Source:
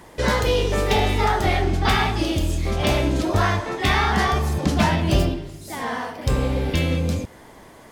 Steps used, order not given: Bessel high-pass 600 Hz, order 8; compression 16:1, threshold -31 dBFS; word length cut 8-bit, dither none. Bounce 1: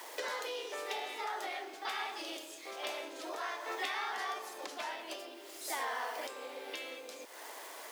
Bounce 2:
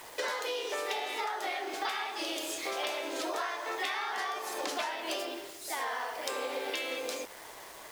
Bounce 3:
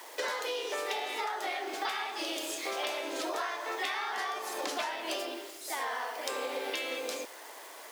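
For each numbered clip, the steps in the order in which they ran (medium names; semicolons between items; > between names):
word length cut > compression > Bessel high-pass; Bessel high-pass > word length cut > compression; word length cut > Bessel high-pass > compression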